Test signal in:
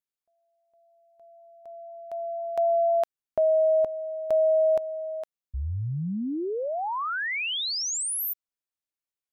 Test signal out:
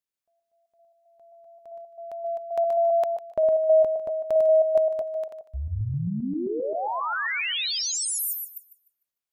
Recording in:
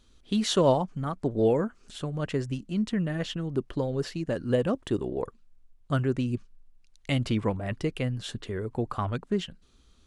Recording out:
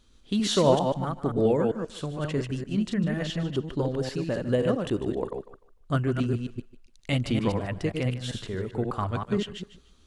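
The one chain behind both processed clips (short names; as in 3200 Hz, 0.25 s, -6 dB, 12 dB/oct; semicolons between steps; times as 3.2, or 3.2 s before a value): reverse delay 0.132 s, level -4 dB; thinning echo 0.15 s, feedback 25%, high-pass 350 Hz, level -14 dB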